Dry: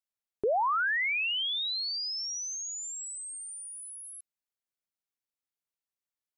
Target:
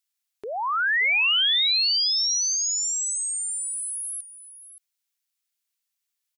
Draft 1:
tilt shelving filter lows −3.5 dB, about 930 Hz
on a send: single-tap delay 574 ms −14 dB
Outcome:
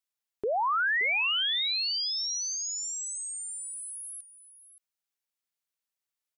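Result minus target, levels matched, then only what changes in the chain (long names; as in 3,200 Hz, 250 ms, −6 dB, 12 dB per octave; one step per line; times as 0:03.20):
1,000 Hz band +6.0 dB
change: tilt shelving filter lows −12.5 dB, about 930 Hz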